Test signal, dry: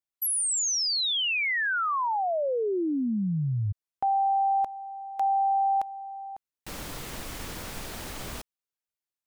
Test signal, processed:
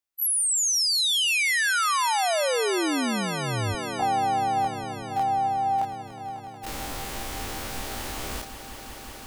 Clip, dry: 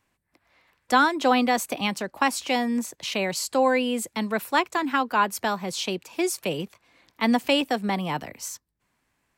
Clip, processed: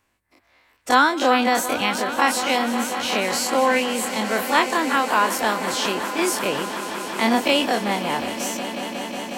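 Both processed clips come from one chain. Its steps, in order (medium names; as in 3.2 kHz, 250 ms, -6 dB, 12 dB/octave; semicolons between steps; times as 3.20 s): every event in the spectrogram widened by 60 ms; peaking EQ 160 Hz -9.5 dB 0.45 oct; echo with a slow build-up 182 ms, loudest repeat 5, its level -15 dB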